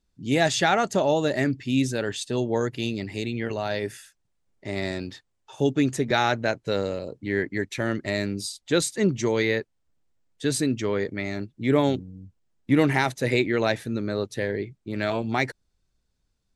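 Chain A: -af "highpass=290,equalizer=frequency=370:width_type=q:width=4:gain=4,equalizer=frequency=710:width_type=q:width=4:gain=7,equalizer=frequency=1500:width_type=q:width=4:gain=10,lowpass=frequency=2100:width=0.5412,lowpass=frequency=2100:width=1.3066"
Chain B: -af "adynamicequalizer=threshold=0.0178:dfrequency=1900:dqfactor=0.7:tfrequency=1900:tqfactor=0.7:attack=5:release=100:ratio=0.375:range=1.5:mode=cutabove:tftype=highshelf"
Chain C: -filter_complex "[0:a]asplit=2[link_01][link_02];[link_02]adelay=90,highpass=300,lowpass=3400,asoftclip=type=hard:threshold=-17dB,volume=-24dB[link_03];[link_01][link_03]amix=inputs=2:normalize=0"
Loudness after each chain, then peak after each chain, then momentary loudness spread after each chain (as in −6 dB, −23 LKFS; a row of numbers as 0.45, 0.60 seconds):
−24.5, −26.0, −25.5 LKFS; −4.0, −7.5, −7.5 dBFS; 13, 9, 9 LU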